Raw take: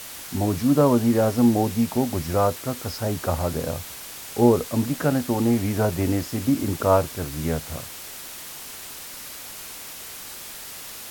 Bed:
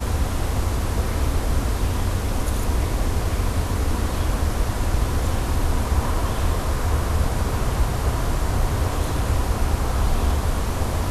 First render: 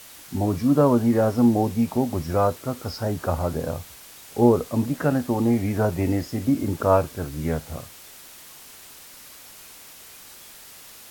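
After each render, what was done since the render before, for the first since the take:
noise reduction from a noise print 7 dB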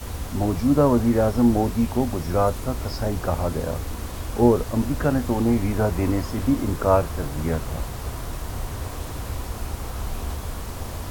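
mix in bed −9 dB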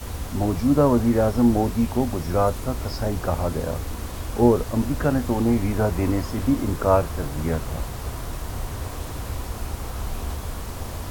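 no processing that can be heard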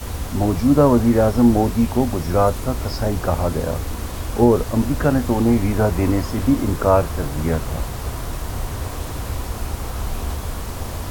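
level +4 dB
brickwall limiter −3 dBFS, peak gain reduction 2.5 dB

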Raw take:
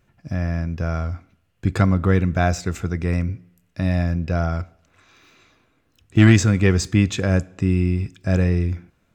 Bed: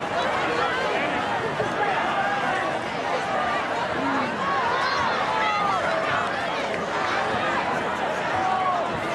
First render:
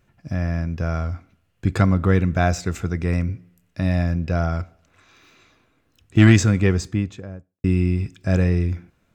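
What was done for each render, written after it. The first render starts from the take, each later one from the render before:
0:06.36–0:07.64: fade out and dull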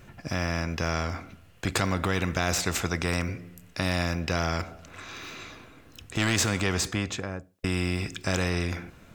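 brickwall limiter −10.5 dBFS, peak gain reduction 6.5 dB
every bin compressed towards the loudest bin 2 to 1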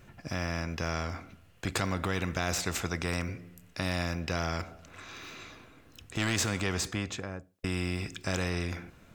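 level −4.5 dB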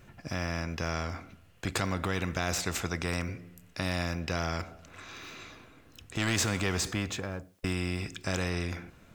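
0:06.27–0:07.73: mu-law and A-law mismatch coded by mu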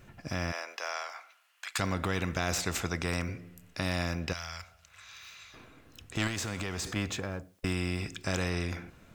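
0:00.51–0:01.78: high-pass filter 460 Hz → 1,100 Hz 24 dB per octave
0:04.33–0:05.54: guitar amp tone stack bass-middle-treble 10-0-10
0:06.27–0:06.96: downward compressor, threshold −31 dBFS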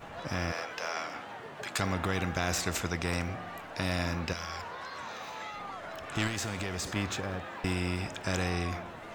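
mix in bed −18.5 dB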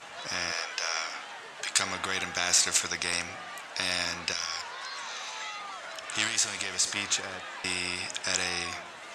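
low-pass filter 8,800 Hz 24 dB per octave
spectral tilt +4.5 dB per octave

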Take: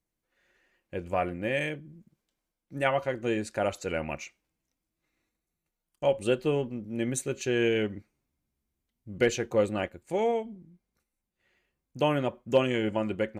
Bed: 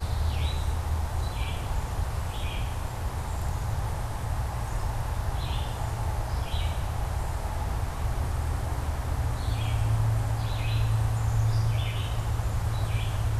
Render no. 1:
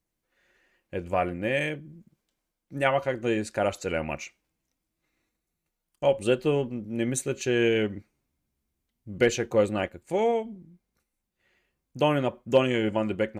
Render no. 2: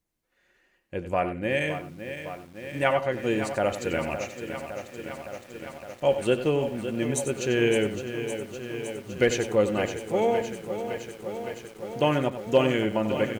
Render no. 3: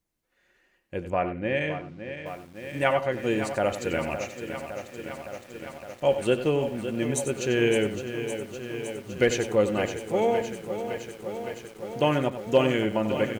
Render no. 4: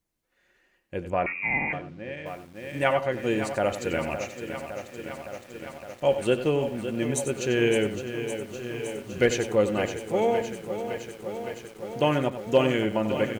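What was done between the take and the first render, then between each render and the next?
level +2.5 dB
on a send: single-tap delay 93 ms −11 dB; on the sum: feedback echo at a low word length 562 ms, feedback 80%, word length 8 bits, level −10 dB
0:01.10–0:02.26: high-frequency loss of the air 140 metres
0:01.26–0:01.73: voice inversion scrambler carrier 2,600 Hz; 0:08.46–0:09.26: double-tracking delay 33 ms −7 dB

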